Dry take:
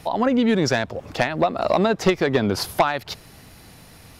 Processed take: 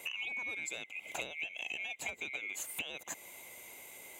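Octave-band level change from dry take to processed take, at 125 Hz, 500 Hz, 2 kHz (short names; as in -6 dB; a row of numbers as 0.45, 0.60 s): -36.0, -30.5, -10.0 dB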